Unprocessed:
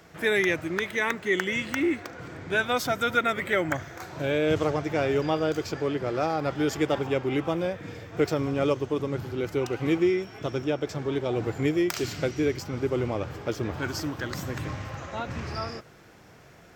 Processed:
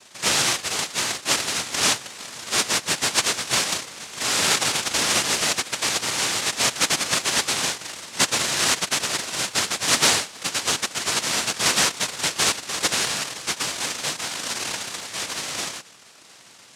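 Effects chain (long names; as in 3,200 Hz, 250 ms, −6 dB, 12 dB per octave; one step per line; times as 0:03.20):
bad sample-rate conversion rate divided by 8×, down filtered, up zero stuff
cochlear-implant simulation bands 1
level −1.5 dB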